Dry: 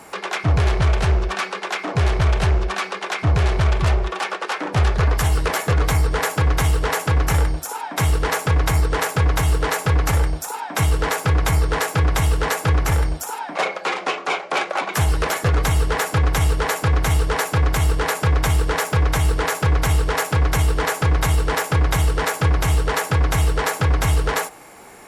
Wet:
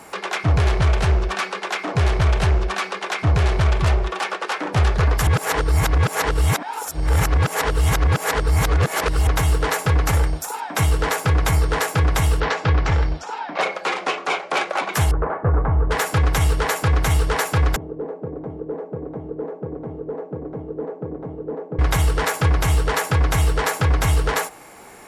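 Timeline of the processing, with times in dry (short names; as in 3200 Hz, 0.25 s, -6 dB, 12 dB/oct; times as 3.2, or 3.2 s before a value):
5.27–9.27 reverse
12.4–13.61 LPF 5200 Hz 24 dB/oct
15.11–15.91 LPF 1300 Hz 24 dB/oct
17.76–21.79 Butterworth band-pass 310 Hz, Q 1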